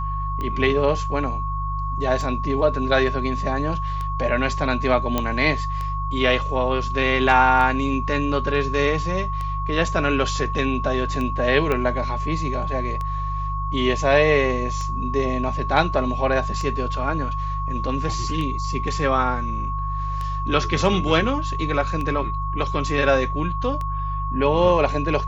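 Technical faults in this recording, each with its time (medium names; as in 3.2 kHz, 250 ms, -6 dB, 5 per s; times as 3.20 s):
hum 50 Hz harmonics 3 -27 dBFS
tick 33 1/3 rpm -17 dBFS
whine 1.1 kHz -27 dBFS
5.18 s: pop -7 dBFS
11.72 s: pop -11 dBFS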